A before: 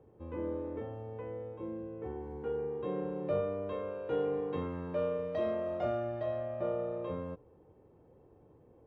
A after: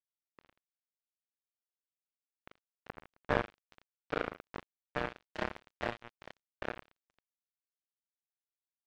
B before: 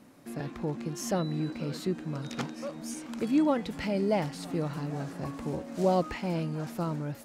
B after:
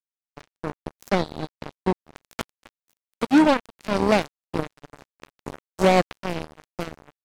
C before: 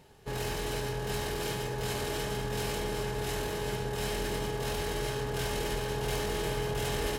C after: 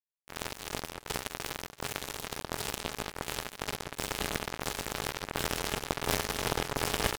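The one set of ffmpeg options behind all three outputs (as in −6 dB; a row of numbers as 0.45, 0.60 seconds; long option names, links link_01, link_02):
-af "acrusher=bits=3:mix=0:aa=0.5,volume=7.5dB"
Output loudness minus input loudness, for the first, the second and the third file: −3.0, +8.0, −1.5 LU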